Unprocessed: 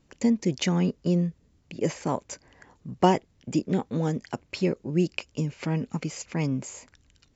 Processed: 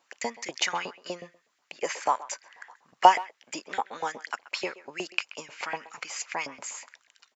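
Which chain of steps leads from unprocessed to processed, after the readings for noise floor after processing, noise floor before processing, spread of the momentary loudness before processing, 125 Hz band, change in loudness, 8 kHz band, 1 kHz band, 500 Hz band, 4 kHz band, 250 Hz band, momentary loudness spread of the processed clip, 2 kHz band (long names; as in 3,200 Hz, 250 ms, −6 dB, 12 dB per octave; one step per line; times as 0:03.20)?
−73 dBFS, −65 dBFS, 14 LU, below −25 dB, −2.0 dB, can't be measured, +7.0 dB, −5.5 dB, +3.5 dB, −19.0 dB, 18 LU, +6.0 dB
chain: far-end echo of a speakerphone 130 ms, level −17 dB
auto-filter high-pass saw up 8.2 Hz 690–2,100 Hz
level +2.5 dB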